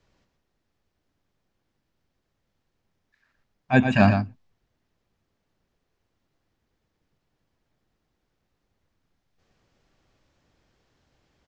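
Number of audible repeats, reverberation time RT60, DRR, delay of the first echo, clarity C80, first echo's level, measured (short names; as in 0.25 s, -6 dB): 1, none, none, 0.117 s, none, -7.5 dB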